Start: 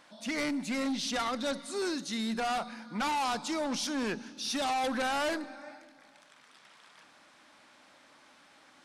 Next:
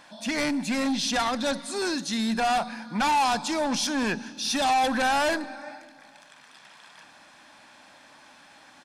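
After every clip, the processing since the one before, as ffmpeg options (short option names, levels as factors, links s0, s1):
-af "aecho=1:1:1.2:0.34,volume=2.11"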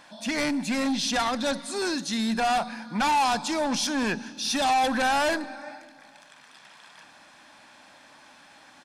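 -af anull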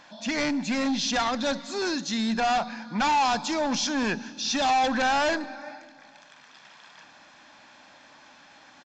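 -af "aresample=16000,aresample=44100"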